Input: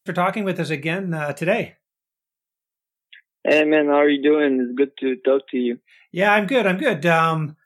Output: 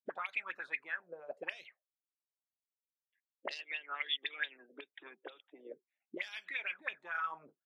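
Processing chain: harmonic-percussive split harmonic -17 dB; random-step tremolo, depth 55%; auto-wah 230–4600 Hz, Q 7.3, up, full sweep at -22 dBFS; trim +1 dB

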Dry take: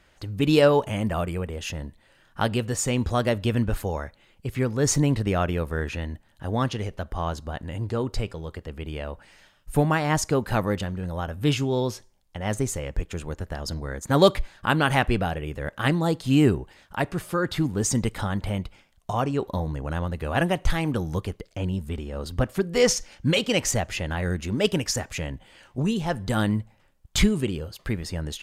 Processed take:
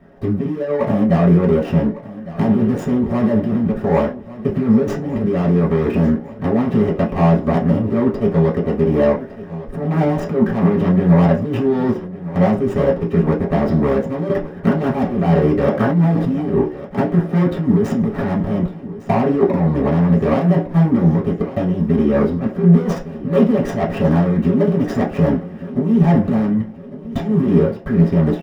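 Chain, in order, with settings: median filter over 41 samples; compressor with a negative ratio -31 dBFS, ratio -1; feedback delay 1156 ms, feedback 50%, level -16 dB; reverberation RT60 0.35 s, pre-delay 3 ms, DRR -6 dB; 15.70–16.60 s: decay stretcher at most 31 dB/s

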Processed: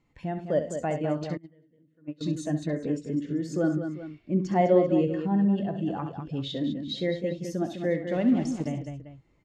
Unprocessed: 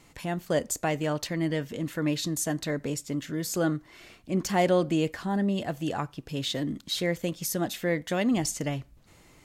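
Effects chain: on a send: multi-tap echo 66/104/204/392 ms -7.5/-16.5/-6.5/-13 dB; 1.37–2.21 s: on the sum: gate -21 dBFS, range -24 dB; 8.12–8.68 s: small samples zeroed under -30.5 dBFS; distance through air 66 m; in parallel at +1 dB: compression, threshold -33 dBFS, peak gain reduction 15 dB; on the sum: spectral contrast expander 1.5:1

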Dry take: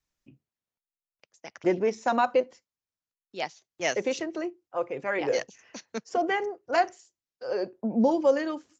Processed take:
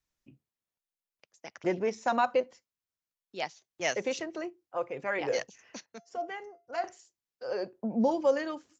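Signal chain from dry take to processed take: dynamic bell 330 Hz, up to -4 dB, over -37 dBFS, Q 1.3; 5.86–6.84 s: feedback comb 690 Hz, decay 0.3 s, mix 70%; trim -2 dB

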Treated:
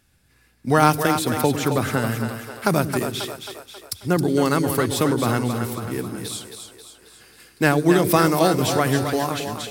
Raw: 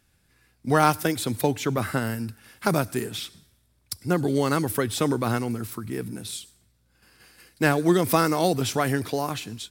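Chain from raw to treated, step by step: two-band feedback delay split 380 Hz, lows 103 ms, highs 269 ms, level -7 dB; trim +3 dB

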